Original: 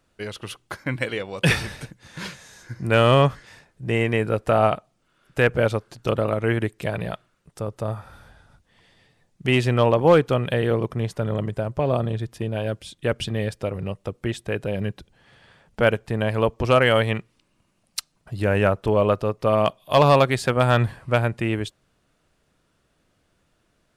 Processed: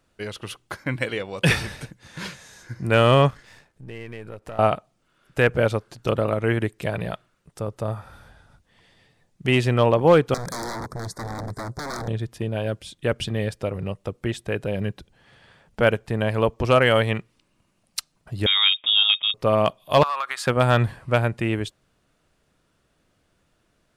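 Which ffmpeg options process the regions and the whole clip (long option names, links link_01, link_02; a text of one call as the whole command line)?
ffmpeg -i in.wav -filter_complex "[0:a]asettb=1/sr,asplit=3[link_01][link_02][link_03];[link_01]atrim=end=3.304[link_04];[link_02]atrim=start=3.3:end=4.59,asetpts=PTS-STARTPTS,afade=type=in:duration=0.004:curve=qsin,afade=type=out:start_time=1.286:duration=0.004:curve=qsin,aeval=exprs='if(lt(val(0),0),0.447*val(0),val(0))':channel_layout=same,acompressor=threshold=-39dB:ratio=2.5:attack=3.2:release=140:knee=1:detection=peak[link_05];[link_03]atrim=start=4.586[link_06];[link_04][link_05]acrossfade=duration=0.004:curve1=hsin:curve2=qsin[link_07];[link_07][link_06]acrossfade=duration=0.004:curve1=qsin:curve2=hsin,asettb=1/sr,asplit=3[link_08][link_09][link_10];[link_08]atrim=end=10.344[link_11];[link_09]atrim=start=10.34:end=12.08,asetpts=PTS-STARTPTS,afade=type=in:duration=0.004:curve=qsin,afade=type=out:start_time=1.736:duration=0.004:curve=qsin,aeval=exprs='0.0501*(abs(mod(val(0)/0.0501+3,4)-2)-1)':channel_layout=same,asuperstop=centerf=2800:order=4:qfactor=1.2,equalizer=frequency=6800:width=0.36:gain=5.5[link_12];[link_10]atrim=start=12.076[link_13];[link_11][link_12]acrossfade=duration=0.004:curve1=hsin:curve2=qsin[link_14];[link_14][link_13]acrossfade=duration=0.004:curve1=qsin:curve2=hsin,asettb=1/sr,asplit=3[link_15][link_16][link_17];[link_15]atrim=end=18.464[link_18];[link_16]atrim=start=18.46:end=19.34,asetpts=PTS-STARTPTS,afade=type=in:duration=0.004:curve=qsin,afade=type=out:start_time=0.876:duration=0.004:curve=qsin,highpass=57,lowpass=frequency=3200:width_type=q:width=0.5098,lowpass=frequency=3200:width_type=q:width=0.6013,lowpass=frequency=3200:width_type=q:width=0.9,lowpass=frequency=3200:width_type=q:width=2.563,afreqshift=-3800[link_19];[link_17]atrim=start=19.336[link_20];[link_18][link_19]acrossfade=duration=0.004:curve1=hsin:curve2=qsin[link_21];[link_21][link_20]acrossfade=duration=0.004:curve1=qsin:curve2=hsin,asettb=1/sr,asplit=3[link_22][link_23][link_24];[link_22]atrim=end=20.034[link_25];[link_23]atrim=start=20.03:end=20.47,asetpts=PTS-STARTPTS,afade=type=in:duration=0.004:curve=qsin,afade=type=out:start_time=0.436:duration=0.004:curve=qsin,highpass=frequency=1200:width_type=q:width=3.7,acompressor=threshold=-22dB:ratio=16:attack=3.2:release=140:knee=1:detection=peak[link_26];[link_24]atrim=start=20.466[link_27];[link_25][link_26]acrossfade=duration=0.004:curve1=hsin:curve2=qsin[link_28];[link_28][link_27]acrossfade=duration=0.004:curve1=qsin:curve2=hsin" out.wav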